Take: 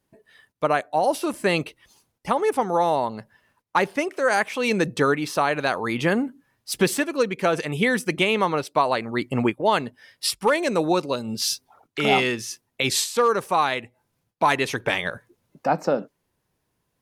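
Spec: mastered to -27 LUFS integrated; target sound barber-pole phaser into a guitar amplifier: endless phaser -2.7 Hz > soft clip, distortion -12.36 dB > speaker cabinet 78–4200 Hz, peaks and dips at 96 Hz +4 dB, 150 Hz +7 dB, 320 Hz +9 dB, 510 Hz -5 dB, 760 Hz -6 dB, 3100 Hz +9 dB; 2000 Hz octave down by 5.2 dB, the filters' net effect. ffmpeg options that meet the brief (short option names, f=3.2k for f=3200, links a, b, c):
-filter_complex "[0:a]equalizer=f=2k:t=o:g=-8.5,asplit=2[a][b];[b]afreqshift=-2.7[c];[a][c]amix=inputs=2:normalize=1,asoftclip=threshold=-21.5dB,highpass=78,equalizer=f=96:t=q:w=4:g=4,equalizer=f=150:t=q:w=4:g=7,equalizer=f=320:t=q:w=4:g=9,equalizer=f=510:t=q:w=4:g=-5,equalizer=f=760:t=q:w=4:g=-6,equalizer=f=3.1k:t=q:w=4:g=9,lowpass=f=4.2k:w=0.5412,lowpass=f=4.2k:w=1.3066,volume=2.5dB"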